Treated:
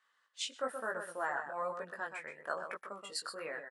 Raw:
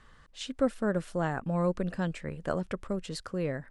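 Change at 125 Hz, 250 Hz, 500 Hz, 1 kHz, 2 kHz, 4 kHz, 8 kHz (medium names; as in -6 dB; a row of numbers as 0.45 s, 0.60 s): -29.0 dB, -22.5 dB, -9.0 dB, -1.0 dB, +1.0 dB, +0.5 dB, +2.0 dB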